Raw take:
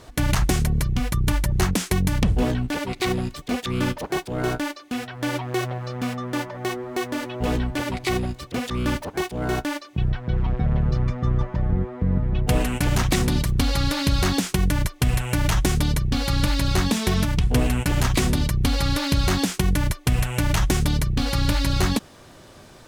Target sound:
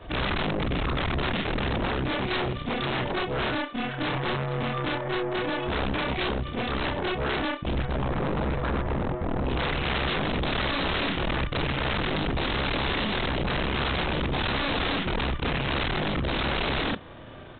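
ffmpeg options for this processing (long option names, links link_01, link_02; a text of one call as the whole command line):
ffmpeg -i in.wav -af "afftfilt=real='re':imag='-im':win_size=4096:overlap=0.75,aeval=exprs='0.266*(cos(1*acos(clip(val(0)/0.266,-1,1)))-cos(1*PI/2))+0.00596*(cos(5*acos(clip(val(0)/0.266,-1,1)))-cos(5*PI/2))+0.0531*(cos(6*acos(clip(val(0)/0.266,-1,1)))-cos(6*PI/2))':channel_layout=same,atempo=1.3,aresample=8000,aeval=exprs='0.0422*(abs(mod(val(0)/0.0422+3,4)-2)-1)':channel_layout=same,aresample=44100,volume=6.5dB" out.wav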